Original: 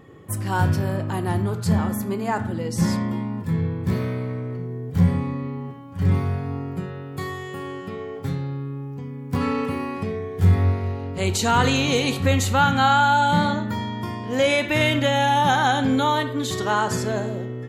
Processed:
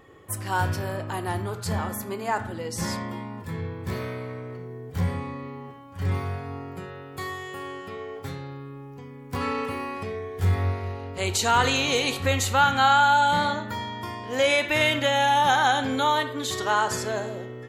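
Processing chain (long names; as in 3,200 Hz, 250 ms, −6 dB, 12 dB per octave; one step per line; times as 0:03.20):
parametric band 170 Hz −12 dB 1.8 octaves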